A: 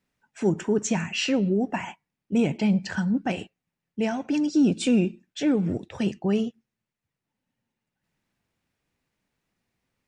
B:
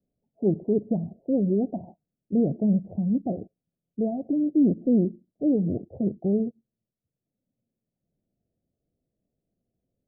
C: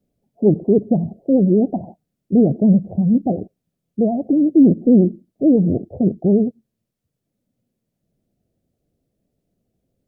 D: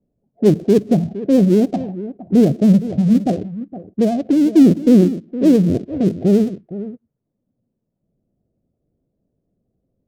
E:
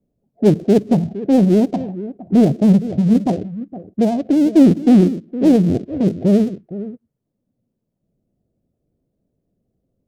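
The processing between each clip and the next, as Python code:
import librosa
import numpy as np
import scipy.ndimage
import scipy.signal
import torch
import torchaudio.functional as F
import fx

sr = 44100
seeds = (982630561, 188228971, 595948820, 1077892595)

y1 = scipy.signal.sosfilt(scipy.signal.butter(12, 700.0, 'lowpass', fs=sr, output='sos'), x)
y2 = fx.vibrato(y1, sr, rate_hz=11.0, depth_cents=89.0)
y2 = y2 * 10.0 ** (9.0 / 20.0)
y3 = fx.dead_time(y2, sr, dead_ms=0.12)
y3 = y3 + 10.0 ** (-14.0 / 20.0) * np.pad(y3, (int(464 * sr / 1000.0), 0))[:len(y3)]
y3 = fx.env_lowpass(y3, sr, base_hz=730.0, full_db=-12.0)
y3 = y3 * 10.0 ** (1.5 / 20.0)
y4 = fx.doppler_dist(y3, sr, depth_ms=0.32)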